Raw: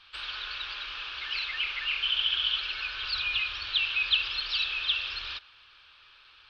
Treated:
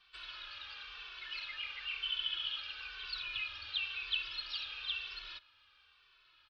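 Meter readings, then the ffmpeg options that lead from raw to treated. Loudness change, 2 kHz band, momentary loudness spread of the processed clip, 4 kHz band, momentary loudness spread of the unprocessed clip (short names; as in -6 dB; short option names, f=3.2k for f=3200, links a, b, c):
-10.5 dB, -10.5 dB, 11 LU, -10.0 dB, 10 LU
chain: -filter_complex "[0:a]asplit=2[a][b];[b]adelay=2.2,afreqshift=-1[c];[a][c]amix=inputs=2:normalize=1,volume=-7.5dB"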